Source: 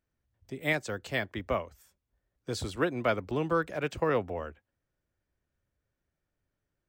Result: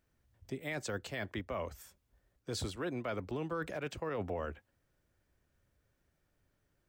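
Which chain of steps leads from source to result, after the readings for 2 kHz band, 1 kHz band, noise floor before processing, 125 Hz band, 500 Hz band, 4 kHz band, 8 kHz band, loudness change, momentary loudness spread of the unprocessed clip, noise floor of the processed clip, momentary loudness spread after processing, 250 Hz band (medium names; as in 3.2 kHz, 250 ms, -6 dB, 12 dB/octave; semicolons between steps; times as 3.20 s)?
-9.0 dB, -8.5 dB, -85 dBFS, -5.5 dB, -8.0 dB, -5.0 dB, -1.0 dB, -8.0 dB, 11 LU, -79 dBFS, 8 LU, -6.5 dB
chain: reverse; compression 16:1, threshold -37 dBFS, peak gain reduction 16 dB; reverse; peak limiter -35 dBFS, peak gain reduction 6.5 dB; trim +6.5 dB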